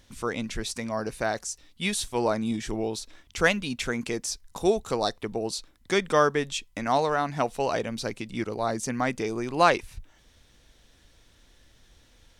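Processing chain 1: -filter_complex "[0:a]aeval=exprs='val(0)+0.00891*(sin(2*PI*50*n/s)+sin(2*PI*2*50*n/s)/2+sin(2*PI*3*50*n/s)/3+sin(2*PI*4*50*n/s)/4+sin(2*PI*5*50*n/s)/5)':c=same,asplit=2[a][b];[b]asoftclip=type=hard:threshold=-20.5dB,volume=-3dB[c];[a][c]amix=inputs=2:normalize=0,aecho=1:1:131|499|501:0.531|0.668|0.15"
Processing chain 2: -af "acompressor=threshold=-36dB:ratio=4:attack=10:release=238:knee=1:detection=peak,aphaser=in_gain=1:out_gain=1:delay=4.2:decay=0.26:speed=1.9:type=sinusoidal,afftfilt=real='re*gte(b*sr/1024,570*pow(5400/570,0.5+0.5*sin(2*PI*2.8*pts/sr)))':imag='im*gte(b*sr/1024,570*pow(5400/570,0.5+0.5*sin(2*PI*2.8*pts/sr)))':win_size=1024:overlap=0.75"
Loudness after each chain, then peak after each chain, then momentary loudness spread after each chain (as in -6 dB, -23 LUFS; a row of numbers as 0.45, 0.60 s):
-21.5, -43.5 LUFS; -5.0, -22.5 dBFS; 18, 22 LU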